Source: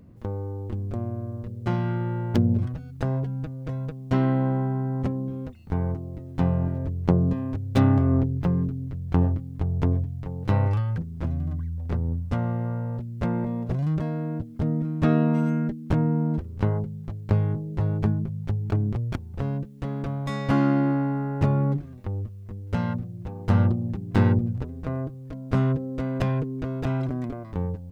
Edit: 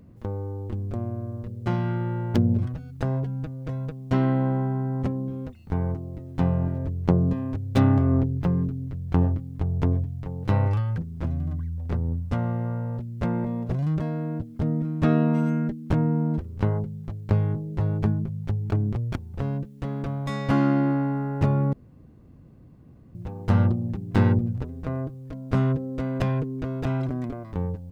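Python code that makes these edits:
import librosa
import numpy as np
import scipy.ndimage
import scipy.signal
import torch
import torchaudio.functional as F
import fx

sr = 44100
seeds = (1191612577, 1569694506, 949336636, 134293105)

y = fx.edit(x, sr, fx.room_tone_fill(start_s=21.73, length_s=1.42), tone=tone)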